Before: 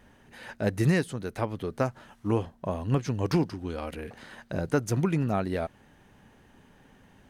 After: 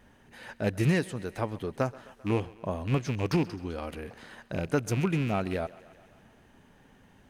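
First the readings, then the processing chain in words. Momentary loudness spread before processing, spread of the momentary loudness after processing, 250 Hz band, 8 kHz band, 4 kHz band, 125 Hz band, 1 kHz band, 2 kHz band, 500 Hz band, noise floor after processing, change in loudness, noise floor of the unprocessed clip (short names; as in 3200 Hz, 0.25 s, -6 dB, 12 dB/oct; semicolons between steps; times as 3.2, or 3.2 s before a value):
12 LU, 12 LU, -1.5 dB, -1.5 dB, +0.5 dB, -1.5 dB, -1.5 dB, 0.0 dB, -1.5 dB, -59 dBFS, -1.5 dB, -59 dBFS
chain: rattling part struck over -27 dBFS, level -27 dBFS; thinning echo 0.131 s, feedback 68%, high-pass 230 Hz, level -20 dB; gain -1.5 dB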